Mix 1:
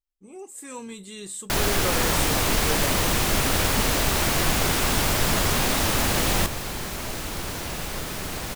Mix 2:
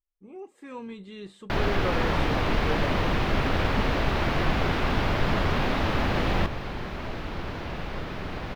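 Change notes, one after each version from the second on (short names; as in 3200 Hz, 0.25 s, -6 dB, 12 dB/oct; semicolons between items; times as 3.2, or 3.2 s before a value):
master: add air absorption 320 m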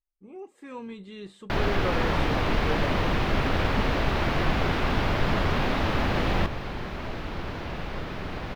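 none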